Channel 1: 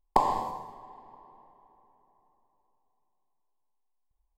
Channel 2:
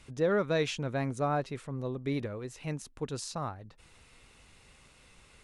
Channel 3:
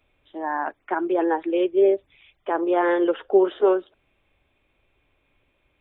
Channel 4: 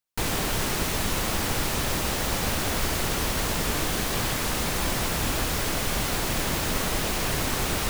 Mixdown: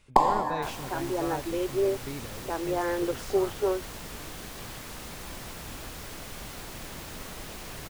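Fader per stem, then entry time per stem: +3.0 dB, -6.5 dB, -8.5 dB, -14.0 dB; 0.00 s, 0.00 s, 0.00 s, 0.45 s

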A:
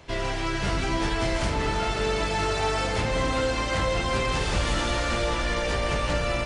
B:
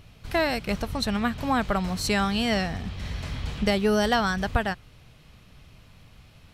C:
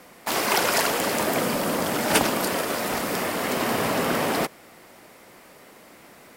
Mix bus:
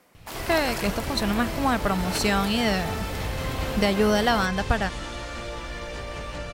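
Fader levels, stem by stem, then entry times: -8.5 dB, +1.0 dB, -11.5 dB; 0.25 s, 0.15 s, 0.00 s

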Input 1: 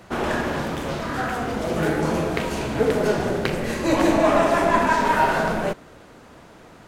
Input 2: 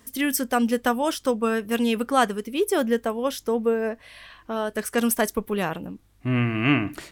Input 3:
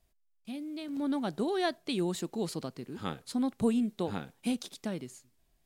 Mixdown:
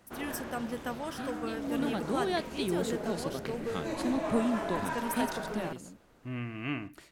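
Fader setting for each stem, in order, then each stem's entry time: -16.5 dB, -14.5 dB, -1.5 dB; 0.00 s, 0.00 s, 0.70 s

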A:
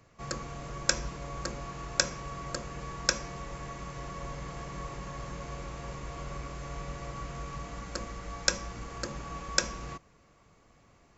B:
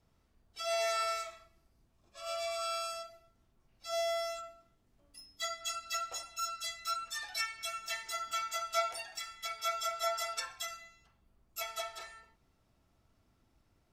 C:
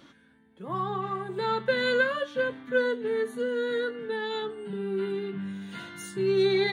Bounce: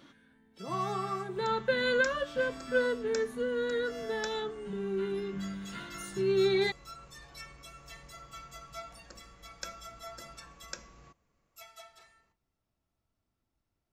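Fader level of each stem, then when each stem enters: -15.5 dB, -12.0 dB, -3.0 dB; 1.15 s, 0.00 s, 0.00 s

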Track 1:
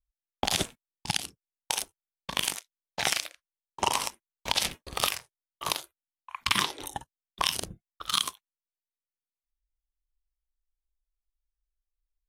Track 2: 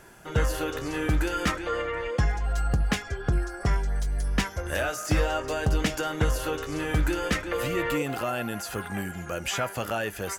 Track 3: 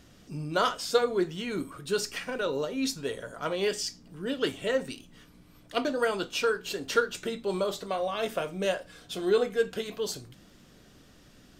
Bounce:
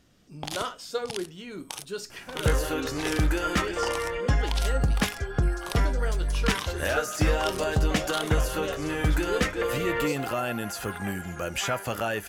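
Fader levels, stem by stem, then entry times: -8.0 dB, +0.5 dB, -6.5 dB; 0.00 s, 2.10 s, 0.00 s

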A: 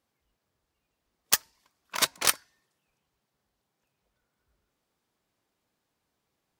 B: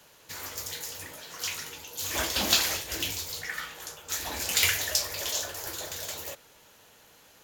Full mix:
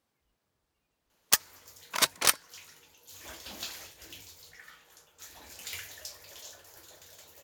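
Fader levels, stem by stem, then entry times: 0.0 dB, -16.5 dB; 0.00 s, 1.10 s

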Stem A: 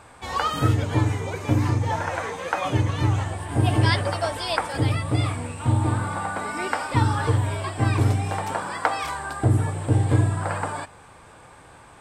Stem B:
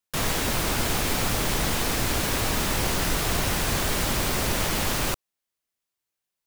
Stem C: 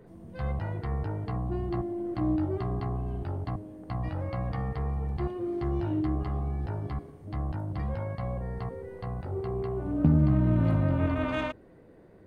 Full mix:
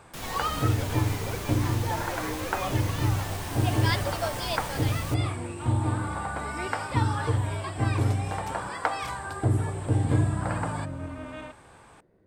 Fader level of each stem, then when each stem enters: -4.5 dB, -12.5 dB, -9.5 dB; 0.00 s, 0.00 s, 0.00 s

